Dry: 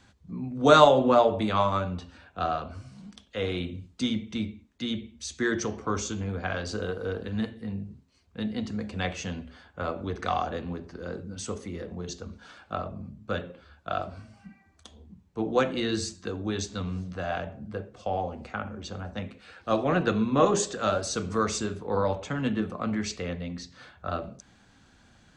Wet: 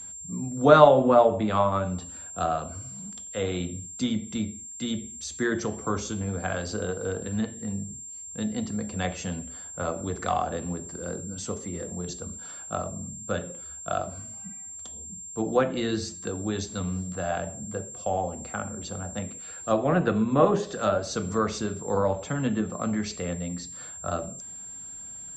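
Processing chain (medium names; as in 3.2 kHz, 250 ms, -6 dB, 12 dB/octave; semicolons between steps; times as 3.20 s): whistle 7.4 kHz -38 dBFS; fifteen-band graphic EQ 160 Hz +4 dB, 630 Hz +3 dB, 2.5 kHz -3 dB; low-pass that closes with the level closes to 2.8 kHz, closed at -19.5 dBFS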